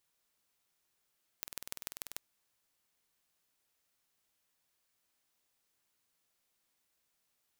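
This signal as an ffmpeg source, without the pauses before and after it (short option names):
-f lavfi -i "aevalsrc='0.282*eq(mod(n,2162),0)*(0.5+0.5*eq(mod(n,6486),0))':d=0.76:s=44100"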